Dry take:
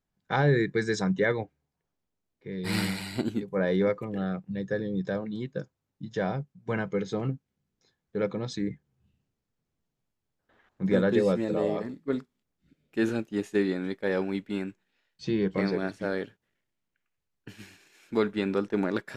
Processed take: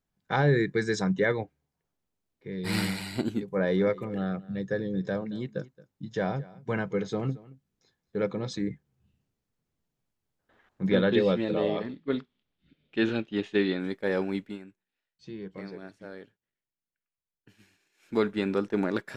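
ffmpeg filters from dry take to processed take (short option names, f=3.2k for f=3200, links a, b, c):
-filter_complex "[0:a]asettb=1/sr,asplit=3[a][b][c];[a]atrim=end=3.524[d];[b]atrim=start=3.52:end=8.62,asetpts=PTS-STARTPTS,afade=t=in:d=0.004:c=qsin,afade=t=out:st=5.096:d=0.004:c=qsin,aecho=1:1:223:0.0944,atrim=end_sample=224910[e];[c]atrim=start=8.616[f];[d][e]acrossfade=d=0.004:c1=hsin:c2=qsin[g];[g][f]acrossfade=d=0.004:c1=qsin:c2=hsin,asettb=1/sr,asplit=3[h][i][j];[h]atrim=end=10.894[k];[i]atrim=start=10.89:end=13.8,asetpts=PTS-STARTPTS,afade=t=in:d=0.004:c=qsin,afade=t=out:st=2.906:d=0.004:c=qsin,lowpass=f=3.4k:t=q:w=2.9[l];[j]atrim=start=13.796[m];[k][l]acrossfade=d=0.004:c1=hsin:c2=qsin[n];[n][m]acrossfade=d=0.004:c1=qsin:c2=hsin,asplit=3[o][p][q];[o]atrim=end=14.58,asetpts=PTS-STARTPTS,afade=t=out:st=14.38:d=0.2:c=qsin:silence=0.223872[r];[p]atrim=start=14.58:end=17.97,asetpts=PTS-STARTPTS,volume=-13dB[s];[q]atrim=start=17.97,asetpts=PTS-STARTPTS,afade=t=in:d=0.2:c=qsin:silence=0.223872[t];[r][s][t]concat=n=3:v=0:a=1"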